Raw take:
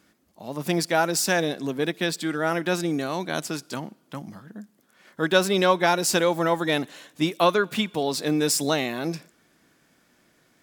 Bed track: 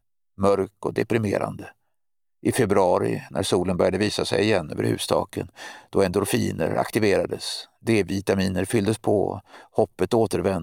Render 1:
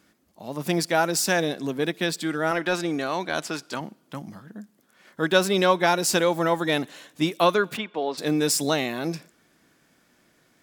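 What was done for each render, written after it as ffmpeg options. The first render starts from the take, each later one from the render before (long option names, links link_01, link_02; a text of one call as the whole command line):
ffmpeg -i in.wav -filter_complex "[0:a]asettb=1/sr,asplit=3[link_01][link_02][link_03];[link_01]atrim=end=2.514[link_04];[link_02]atrim=start=2.51:end=3.81,asetpts=PTS-STARTPTS,afade=type=in:duration=0.004:curve=qsin,afade=type=out:start_time=1.296:duration=0.004:curve=qsin,asplit=2[link_05][link_06];[link_06]highpass=frequency=720:poles=1,volume=9dB,asoftclip=type=tanh:threshold=-10dB[link_07];[link_05][link_07]amix=inputs=2:normalize=0,lowpass=frequency=3200:poles=1,volume=-6dB[link_08];[link_03]atrim=start=3.806[link_09];[link_04][link_08]acrossfade=duration=0.004:curve1=hsin:curve2=qsin[link_10];[link_10][link_09]acrossfade=duration=0.004:curve1=qsin:curve2=hsin,asplit=3[link_11][link_12][link_13];[link_11]afade=type=out:start_time=7.76:duration=0.02[link_14];[link_12]highpass=340,lowpass=2500,afade=type=in:start_time=7.76:duration=0.02,afade=type=out:start_time=8.17:duration=0.02[link_15];[link_13]afade=type=in:start_time=8.17:duration=0.02[link_16];[link_14][link_15][link_16]amix=inputs=3:normalize=0" out.wav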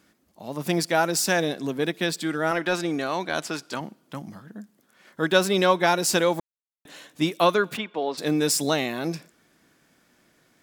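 ffmpeg -i in.wav -filter_complex "[0:a]asplit=3[link_01][link_02][link_03];[link_01]atrim=end=6.4,asetpts=PTS-STARTPTS,afade=type=out:start_time=6.396:duration=0.004:curve=hsin[link_04];[link_02]atrim=start=6.4:end=6.85,asetpts=PTS-STARTPTS,volume=0[link_05];[link_03]atrim=start=6.85,asetpts=PTS-STARTPTS,afade=type=in:duration=0.004:curve=hsin[link_06];[link_04][link_05][link_06]concat=n=3:v=0:a=1" out.wav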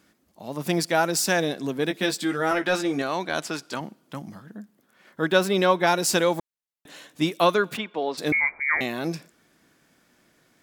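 ffmpeg -i in.wav -filter_complex "[0:a]asettb=1/sr,asplit=3[link_01][link_02][link_03];[link_01]atrim=end=1.894[link_04];[link_02]atrim=start=1.89:end=3.02,asetpts=PTS-STARTPTS,afade=type=in:duration=0.004:curve=qsin,afade=type=out:start_time=1.126:duration=0.004:curve=qsin,asplit=2[link_05][link_06];[link_06]adelay=15,volume=-5dB[link_07];[link_05][link_07]amix=inputs=2:normalize=0,atrim=end_sample=49833[link_08];[link_03]atrim=start=3.016[link_09];[link_04][link_08]acrossfade=duration=0.004:curve1=hsin:curve2=qsin[link_10];[link_10][link_09]acrossfade=duration=0.004:curve1=qsin:curve2=hsin,asettb=1/sr,asplit=3[link_11][link_12][link_13];[link_11]atrim=end=4.564[link_14];[link_12]atrim=start=4.56:end=5.87,asetpts=PTS-STARTPTS,afade=type=in:duration=0.004:curve=qsin,afade=type=out:start_time=1.306:duration=0.004:curve=qsin,equalizer=frequency=7300:width_type=o:width=1.9:gain=-4.5[link_15];[link_13]atrim=start=5.866[link_16];[link_14][link_15]acrossfade=duration=0.004:curve1=hsin:curve2=qsin[link_17];[link_17][link_16]acrossfade=duration=0.004:curve1=qsin:curve2=hsin,asettb=1/sr,asplit=3[link_18][link_19][link_20];[link_18]atrim=end=8.324[link_21];[link_19]atrim=start=8.32:end=8.81,asetpts=PTS-STARTPTS,afade=type=in:duration=0.004:curve=qsin,afade=type=out:start_time=0.486:duration=0.004:curve=qsin,lowpass=frequency=2100:width_type=q:width=0.5098,lowpass=frequency=2100:width_type=q:width=0.6013,lowpass=frequency=2100:width_type=q:width=0.9,lowpass=frequency=2100:width_type=q:width=2.563,afreqshift=-2500[link_22];[link_20]atrim=start=8.806[link_23];[link_21][link_22]acrossfade=duration=0.004:curve1=hsin:curve2=qsin[link_24];[link_24][link_23]acrossfade=duration=0.004:curve1=qsin:curve2=hsin" out.wav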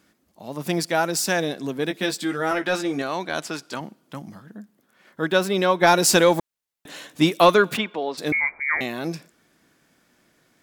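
ffmpeg -i in.wav -filter_complex "[0:a]asplit=3[link_01][link_02][link_03];[link_01]afade=type=out:start_time=5.81:duration=0.02[link_04];[link_02]acontrast=47,afade=type=in:start_time=5.81:duration=0.02,afade=type=out:start_time=7.95:duration=0.02[link_05];[link_03]afade=type=in:start_time=7.95:duration=0.02[link_06];[link_04][link_05][link_06]amix=inputs=3:normalize=0" out.wav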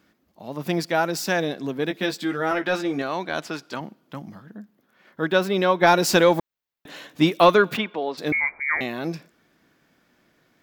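ffmpeg -i in.wav -af "equalizer=frequency=9000:width_type=o:width=1.1:gain=-10.5" out.wav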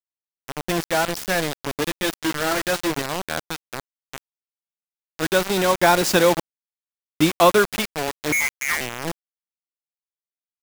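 ffmpeg -i in.wav -af "acrusher=bits=3:mix=0:aa=0.000001" out.wav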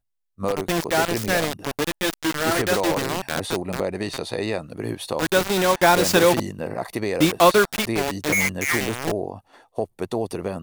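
ffmpeg -i in.wav -i bed.wav -filter_complex "[1:a]volume=-5.5dB[link_01];[0:a][link_01]amix=inputs=2:normalize=0" out.wav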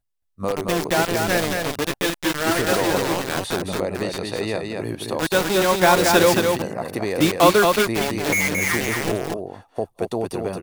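ffmpeg -i in.wav -af "aecho=1:1:223:0.631" out.wav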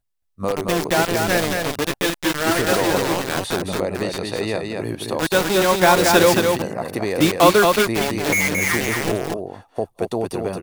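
ffmpeg -i in.wav -af "volume=1.5dB,alimiter=limit=-1dB:level=0:latency=1" out.wav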